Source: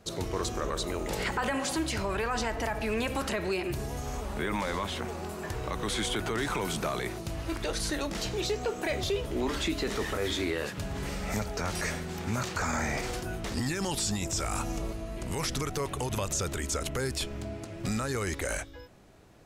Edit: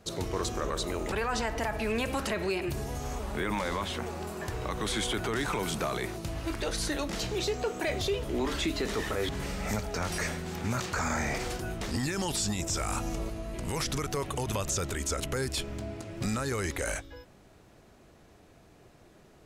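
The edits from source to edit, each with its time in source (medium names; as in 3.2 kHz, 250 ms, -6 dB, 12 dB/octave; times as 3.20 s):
1.12–2.14 s: delete
10.31–10.92 s: delete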